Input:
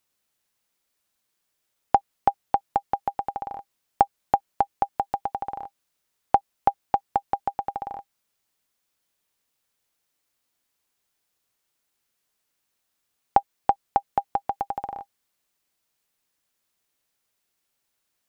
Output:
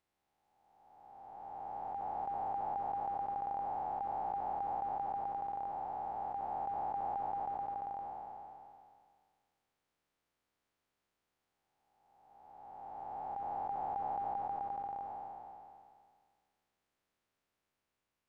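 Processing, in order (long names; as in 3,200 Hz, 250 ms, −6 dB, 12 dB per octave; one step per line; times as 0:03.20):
spectrum smeared in time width 1,260 ms
low-pass filter 1,400 Hz 6 dB per octave
level +2 dB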